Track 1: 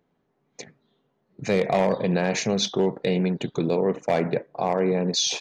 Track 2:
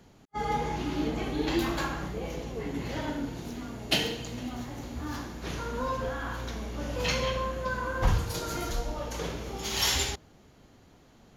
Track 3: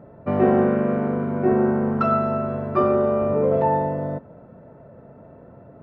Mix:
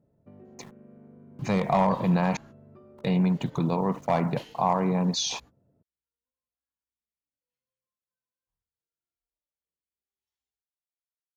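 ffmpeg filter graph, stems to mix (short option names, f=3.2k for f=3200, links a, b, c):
-filter_complex "[0:a]aeval=exprs='val(0)*gte(abs(val(0)),0.00398)':c=same,firequalizer=gain_entry='entry(160,0);entry(410,-13);entry(1000,5);entry(1600,-8)':delay=0.05:min_phase=1,volume=3dB,asplit=3[a][b][c];[a]atrim=end=2.37,asetpts=PTS-STARTPTS,afade=t=out:st=2.366:d=0.004:c=hsin[d];[b]atrim=start=2.37:end=2.98,asetpts=PTS-STARTPTS,volume=0[e];[c]atrim=start=2.98,asetpts=PTS-STARTPTS,afade=t=in:d=0.004:c=hsin[f];[d][e][f]concat=n=3:v=0:a=1,asplit=2[g][h];[1:a]flanger=delay=18.5:depth=7.6:speed=0.19,adelay=450,volume=-17.5dB[i];[2:a]acompressor=threshold=-25dB:ratio=6,equalizer=f=1.2k:w=0.48:g=-13,volume=-19dB[j];[h]apad=whole_len=520927[k];[i][k]sidechaingate=range=-50dB:threshold=-47dB:ratio=16:detection=peak[l];[g][l][j]amix=inputs=3:normalize=0"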